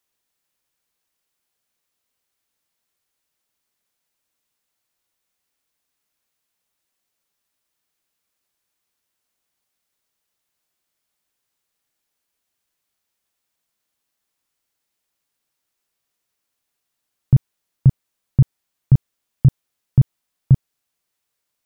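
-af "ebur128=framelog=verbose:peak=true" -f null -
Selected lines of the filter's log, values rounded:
Integrated loudness:
  I:         -19.4 LUFS
  Threshold: -29.6 LUFS
Loudness range:
  LRA:         7.8 LU
  Threshold: -41.9 LUFS
  LRA low:   -27.8 LUFS
  LRA high:  -20.0 LUFS
True peak:
  Peak:       -4.3 dBFS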